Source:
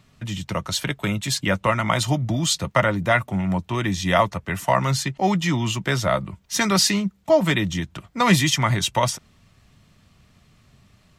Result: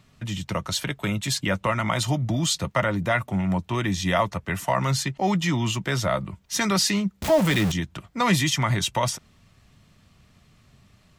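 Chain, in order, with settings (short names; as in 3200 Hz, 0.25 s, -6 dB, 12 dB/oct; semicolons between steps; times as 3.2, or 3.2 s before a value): 7.22–7.72 zero-crossing step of -21.5 dBFS; in parallel at +1 dB: limiter -15 dBFS, peak gain reduction 10 dB; on the sum: gain -7.5 dB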